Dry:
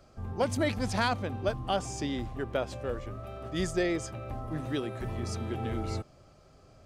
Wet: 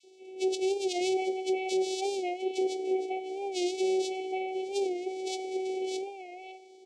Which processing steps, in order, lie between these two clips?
low-pass filter 5,800 Hz 12 dB per octave
spectral tilt +4 dB per octave
on a send at −9.5 dB: convolution reverb RT60 1.1 s, pre-delay 3 ms
on the sum: channel vocoder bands 4, saw 377 Hz
parametric band 540 Hz +14 dB 0.25 octaves
three-band delay without the direct sound highs, lows, mids 30/550 ms, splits 700/2,400 Hz
brickwall limiter −27 dBFS, peak gain reduction 8.5 dB
linear-phase brick-wall band-stop 760–2,000 Hz
wow of a warped record 45 rpm, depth 100 cents
level +7 dB

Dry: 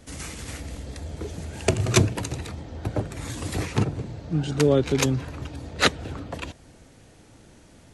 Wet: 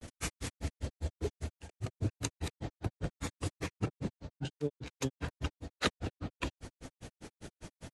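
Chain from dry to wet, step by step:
reversed playback
downward compressor 5 to 1, threshold −37 dBFS, peak gain reduction 21.5 dB
reversed playback
granular cloud 103 ms, grains 5 per second, spray 14 ms, pitch spread up and down by 0 semitones
level +7.5 dB

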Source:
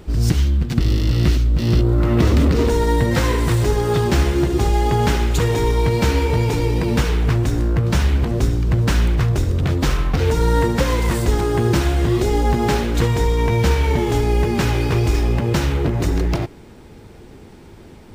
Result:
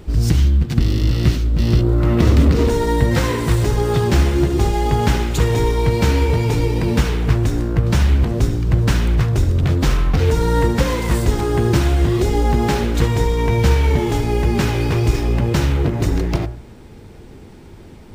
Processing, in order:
low-shelf EQ 220 Hz +3.5 dB
hum removal 59.77 Hz, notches 30

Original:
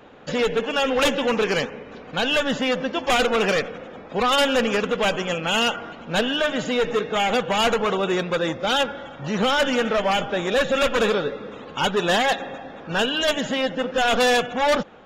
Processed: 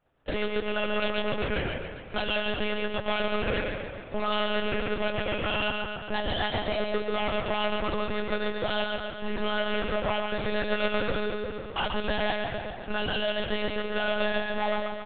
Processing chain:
mains-hum notches 60/120/180/240/300/360/420 Hz
downward expander −30 dBFS
downward compressor 8 to 1, threshold −32 dBFS, peak gain reduction 14.5 dB
0:05.95–0:06.81: frequency shifter +180 Hz
on a send: repeating echo 134 ms, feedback 54%, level −4 dB
on the sum: one-pitch LPC vocoder at 8 kHz 210 Hz
level +4.5 dB

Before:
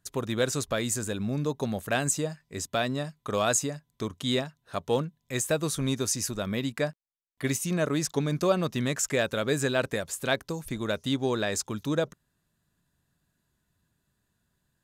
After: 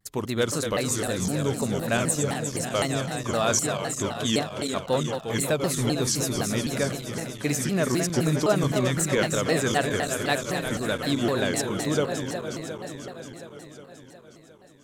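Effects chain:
feedback delay that plays each chunk backwards 180 ms, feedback 82%, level −7 dB
pitch modulation by a square or saw wave saw down 3.9 Hz, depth 250 cents
level +1.5 dB

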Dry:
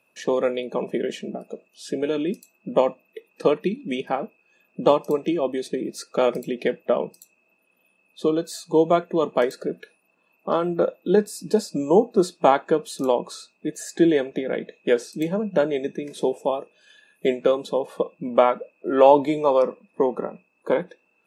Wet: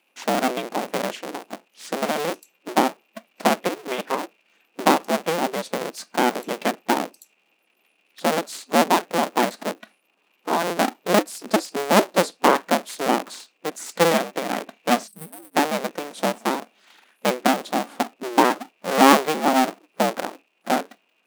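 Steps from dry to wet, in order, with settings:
sub-harmonics by changed cycles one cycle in 2, inverted
linear-phase brick-wall high-pass 170 Hz
gain on a spectral selection 0:15.07–0:15.55, 230–8,000 Hz −20 dB

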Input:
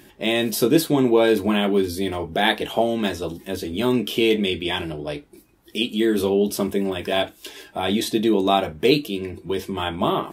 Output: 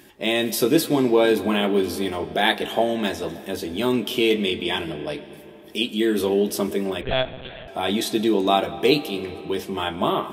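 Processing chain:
low-shelf EQ 150 Hz −7 dB
convolution reverb RT60 3.7 s, pre-delay 75 ms, DRR 14 dB
0:07.01–0:07.68: one-pitch LPC vocoder at 8 kHz 130 Hz

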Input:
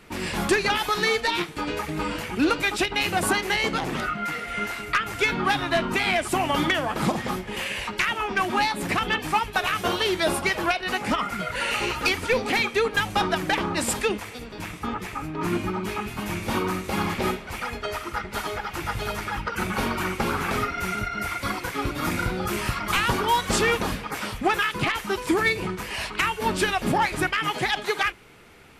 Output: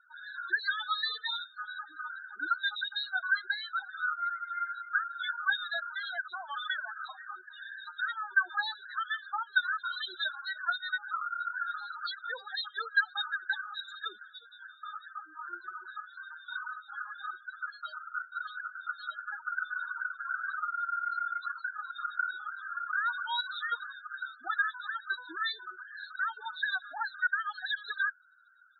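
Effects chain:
pair of resonant band-passes 2,400 Hz, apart 1.3 octaves
spectral peaks only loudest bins 8
level +2.5 dB

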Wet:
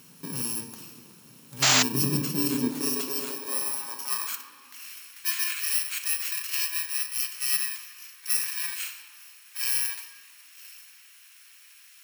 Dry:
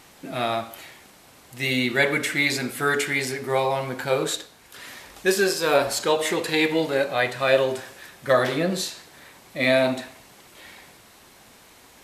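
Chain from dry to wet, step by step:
samples in bit-reversed order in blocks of 64 samples
0:01.92–0:02.74: low-shelf EQ 370 Hz +11 dB
in parallel at +1.5 dB: downward compressor, threshold −32 dBFS, peak gain reduction 17.5 dB
on the sum: high-pass filter sweep 160 Hz → 1,900 Hz, 0:02.10–0:04.74
on a send at −8 dB: convolution reverb RT60 2.2 s, pre-delay 3 ms
0:01.62–0:01.83: on the sum: sound drawn into the spectrogram noise 570–7,700 Hz −11 dBFS
level −9 dB

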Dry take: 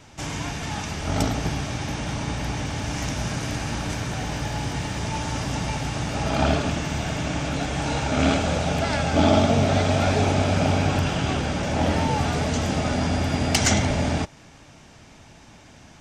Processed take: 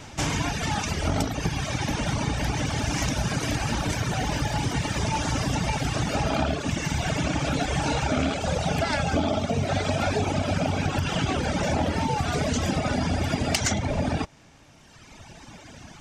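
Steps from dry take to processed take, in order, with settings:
reverb reduction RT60 1.9 s
downward compressor 10 to 1, threshold −28 dBFS, peak gain reduction 13.5 dB
level +7 dB

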